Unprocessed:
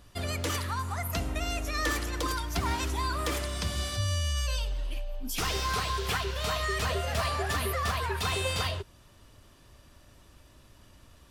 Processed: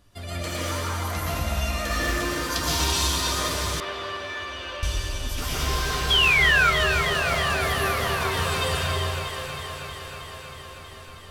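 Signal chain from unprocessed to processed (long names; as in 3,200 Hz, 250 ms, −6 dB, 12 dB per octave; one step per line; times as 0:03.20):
0:02.50–0:03.07: high shelf with overshoot 2,600 Hz +10 dB, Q 1.5
dense smooth reverb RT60 1.9 s, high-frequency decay 0.9×, pre-delay 105 ms, DRR −7 dB
0:06.10–0:06.71: sound drawn into the spectrogram fall 1,300–3,400 Hz −15 dBFS
delay that swaps between a low-pass and a high-pass 159 ms, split 900 Hz, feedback 88%, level −6.5 dB
flanger 0.25 Hz, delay 9.9 ms, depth 5 ms, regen +58%
0:03.80–0:04.83: three-way crossover with the lows and the highs turned down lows −22 dB, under 290 Hz, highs −23 dB, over 3,400 Hz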